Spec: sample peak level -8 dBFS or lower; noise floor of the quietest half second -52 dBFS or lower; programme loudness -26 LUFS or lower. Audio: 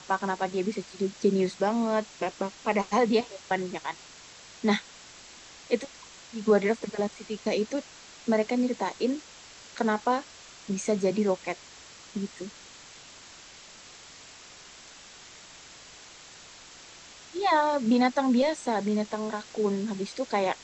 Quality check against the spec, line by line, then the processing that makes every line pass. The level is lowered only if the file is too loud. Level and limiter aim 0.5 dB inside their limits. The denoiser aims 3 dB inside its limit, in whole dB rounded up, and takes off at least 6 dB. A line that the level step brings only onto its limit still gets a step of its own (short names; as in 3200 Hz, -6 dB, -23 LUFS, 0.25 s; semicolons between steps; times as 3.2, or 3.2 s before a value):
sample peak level -10.5 dBFS: OK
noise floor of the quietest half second -49 dBFS: fail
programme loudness -28.5 LUFS: OK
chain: denoiser 6 dB, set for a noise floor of -49 dBFS